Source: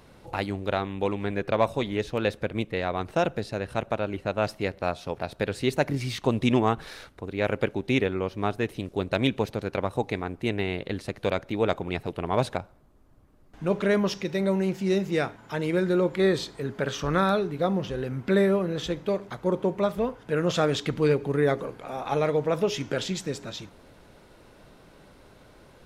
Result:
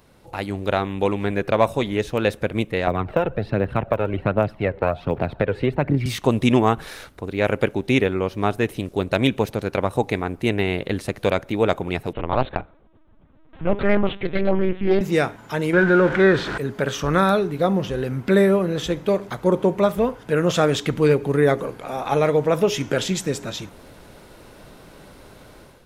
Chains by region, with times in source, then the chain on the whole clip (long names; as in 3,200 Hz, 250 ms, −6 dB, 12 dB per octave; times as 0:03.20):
0:02.87–0:06.06: high-frequency loss of the air 490 metres + phase shifter 1.3 Hz, delay 2.4 ms, feedback 46% + multiband upward and downward compressor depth 100%
0:12.13–0:15.01: linear-prediction vocoder at 8 kHz pitch kept + highs frequency-modulated by the lows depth 0.35 ms
0:15.73–0:16.58: converter with a step at zero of −28 dBFS + low-pass filter 3,000 Hz + parametric band 1,500 Hz +14.5 dB 0.35 octaves
whole clip: high-shelf EQ 10,000 Hz +8.5 dB; automatic gain control gain up to 10 dB; dynamic equaliser 4,500 Hz, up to −4 dB, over −41 dBFS, Q 2.1; level −2.5 dB